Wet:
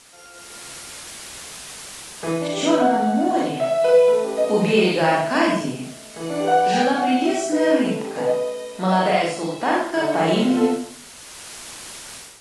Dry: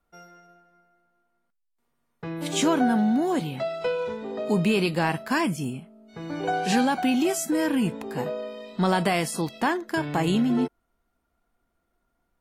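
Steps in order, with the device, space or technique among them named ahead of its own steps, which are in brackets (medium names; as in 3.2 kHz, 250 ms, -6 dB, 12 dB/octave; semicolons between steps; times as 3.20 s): filmed off a television (band-pass 250–6100 Hz; peaking EQ 620 Hz +10 dB 0.34 oct; reverberation RT60 0.50 s, pre-delay 31 ms, DRR -4 dB; white noise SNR 22 dB; level rider gain up to 13 dB; trim -4.5 dB; AAC 48 kbps 24 kHz)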